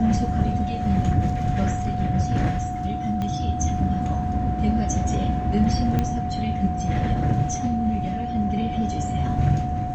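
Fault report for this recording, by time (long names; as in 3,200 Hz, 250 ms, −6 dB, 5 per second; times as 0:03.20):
whistle 730 Hz −28 dBFS
0:03.22: click −17 dBFS
0:05.99: click −11 dBFS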